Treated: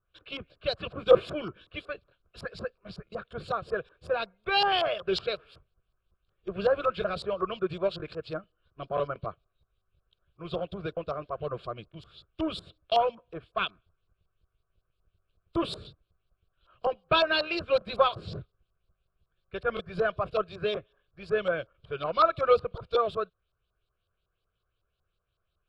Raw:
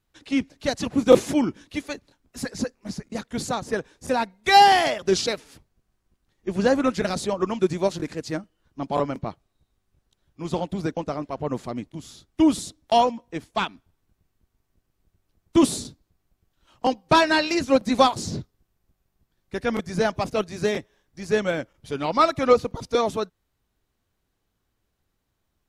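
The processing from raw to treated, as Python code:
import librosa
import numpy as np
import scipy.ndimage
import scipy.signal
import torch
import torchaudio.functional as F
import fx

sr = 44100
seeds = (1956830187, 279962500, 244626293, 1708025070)

p1 = np.clip(x, -10.0 ** (-19.5 / 20.0), 10.0 ** (-19.5 / 20.0))
p2 = x + (p1 * 10.0 ** (-9.0 / 20.0))
p3 = fx.fixed_phaser(p2, sr, hz=1300.0, stages=8)
p4 = fx.filter_lfo_lowpass(p3, sr, shape='saw_up', hz=5.4, low_hz=970.0, high_hz=5500.0, q=2.1)
y = p4 * 10.0 ** (-6.0 / 20.0)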